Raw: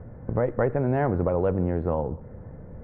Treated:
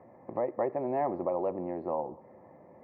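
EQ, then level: resonant high-pass 410 Hz, resonance Q 4.9; dynamic EQ 2100 Hz, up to -6 dB, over -36 dBFS, Q 0.72; fixed phaser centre 2200 Hz, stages 8; -1.5 dB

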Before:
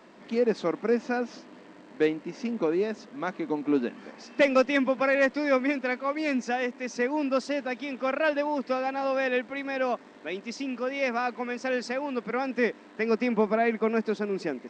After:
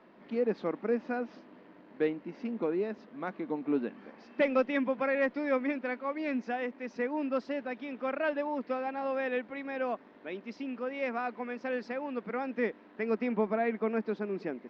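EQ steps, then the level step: air absorption 270 m; -4.5 dB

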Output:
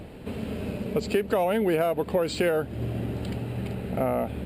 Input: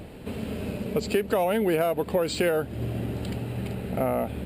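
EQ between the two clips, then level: high shelf 4900 Hz -4.5 dB; 0.0 dB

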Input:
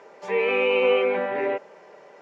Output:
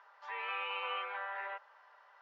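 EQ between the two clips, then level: HPF 1100 Hz 24 dB/oct; air absorption 300 m; bell 2300 Hz -12.5 dB 0.54 oct; 0.0 dB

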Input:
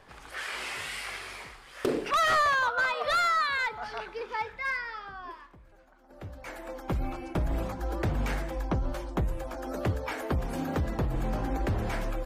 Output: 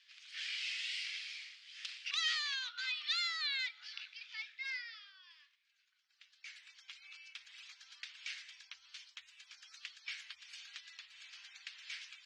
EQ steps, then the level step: inverse Chebyshev high-pass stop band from 580 Hz, stop band 70 dB; LPF 5600 Hz 24 dB/oct; +1.5 dB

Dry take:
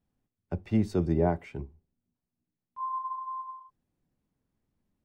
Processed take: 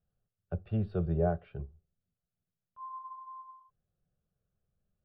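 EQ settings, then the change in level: air absorption 400 m; bell 160 Hz +2.5 dB; fixed phaser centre 1400 Hz, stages 8; 0.0 dB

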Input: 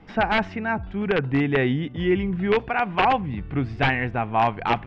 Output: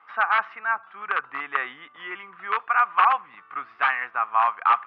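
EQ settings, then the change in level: resonant high-pass 1200 Hz, resonance Q 8.1; air absorption 300 m; -2.5 dB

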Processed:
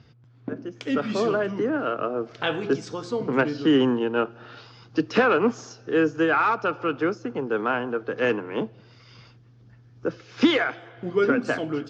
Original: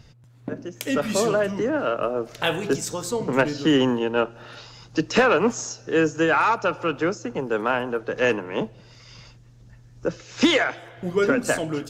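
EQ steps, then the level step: speaker cabinet 110–4400 Hz, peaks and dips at 170 Hz -6 dB, 580 Hz -7 dB, 910 Hz -5 dB, 1900 Hz -5 dB, 2700 Hz -5 dB, 3900 Hz -6 dB; +1.0 dB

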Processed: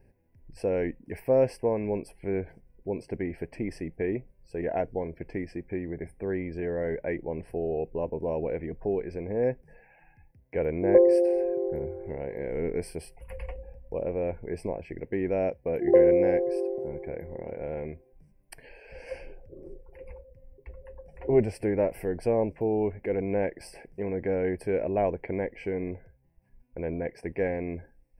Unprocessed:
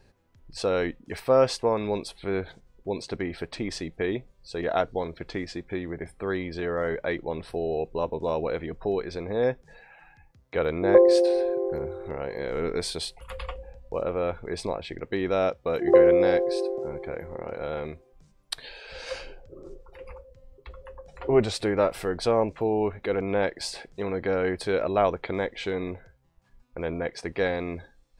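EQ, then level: Butterworth band-stop 3700 Hz, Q 0.97; fixed phaser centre 3000 Hz, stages 4; 0.0 dB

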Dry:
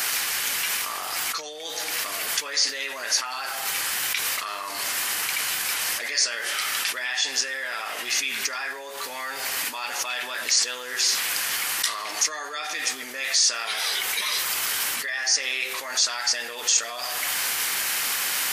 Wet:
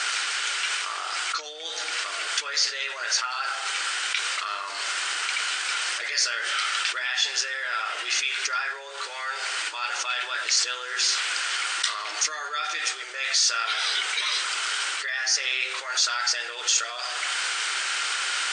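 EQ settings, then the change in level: brick-wall FIR band-pass 300–9200 Hz; bell 1400 Hz +11 dB 0.29 oct; bell 3200 Hz +6 dB 1.2 oct; -4.0 dB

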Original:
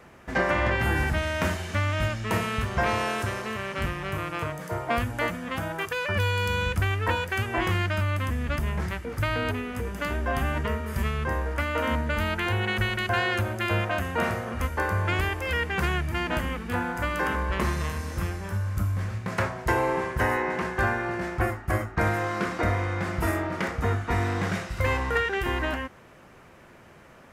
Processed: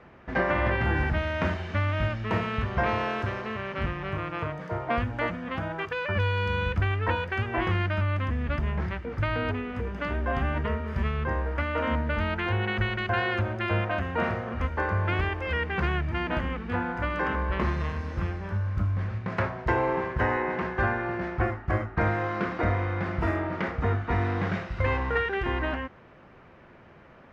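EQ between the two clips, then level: air absorption 240 m; 0.0 dB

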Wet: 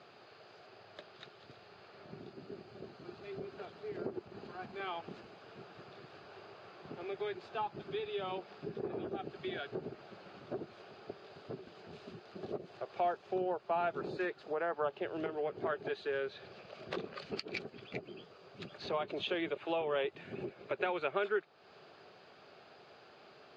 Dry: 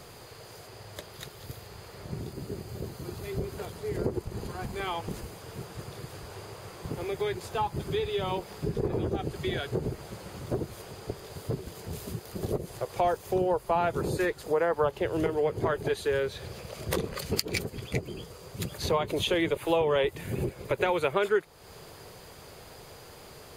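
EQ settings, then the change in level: speaker cabinet 310–3700 Hz, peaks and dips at 310 Hz -4 dB, 490 Hz -9 dB, 970 Hz -9 dB, 2000 Hz -8 dB, 3300 Hz -5 dB; -3.0 dB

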